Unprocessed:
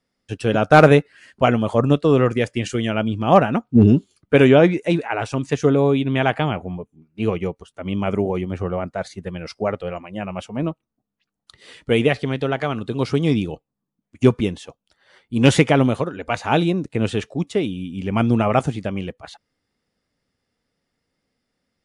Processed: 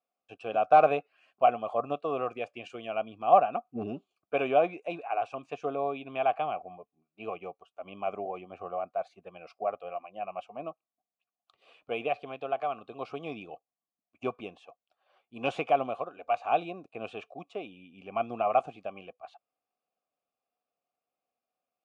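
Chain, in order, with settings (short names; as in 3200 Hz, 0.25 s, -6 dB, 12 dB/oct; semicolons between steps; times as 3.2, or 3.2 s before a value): de-esser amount 45%; vowel filter a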